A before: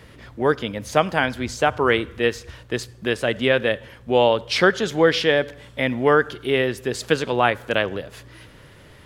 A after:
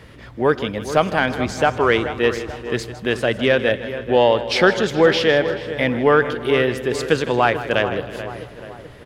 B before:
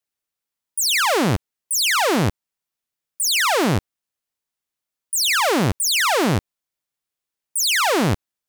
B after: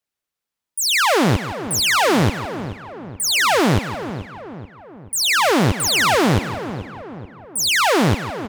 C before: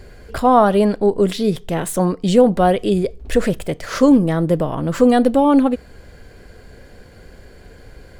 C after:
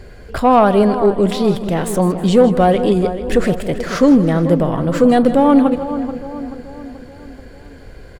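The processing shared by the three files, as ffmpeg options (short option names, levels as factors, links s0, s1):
-filter_complex "[0:a]asplit=2[s0][s1];[s1]adelay=433,lowpass=f=1800:p=1,volume=0.251,asplit=2[s2][s3];[s3]adelay=433,lowpass=f=1800:p=1,volume=0.52,asplit=2[s4][s5];[s5]adelay=433,lowpass=f=1800:p=1,volume=0.52,asplit=2[s6][s7];[s7]adelay=433,lowpass=f=1800:p=1,volume=0.52,asplit=2[s8][s9];[s9]adelay=433,lowpass=f=1800:p=1,volume=0.52[s10];[s2][s4][s6][s8][s10]amix=inputs=5:normalize=0[s11];[s0][s11]amix=inputs=2:normalize=0,acontrast=22,highshelf=f=5700:g=-5,asplit=2[s12][s13];[s13]aecho=0:1:158|316|474|632:0.2|0.0918|0.0422|0.0194[s14];[s12][s14]amix=inputs=2:normalize=0,volume=0.794"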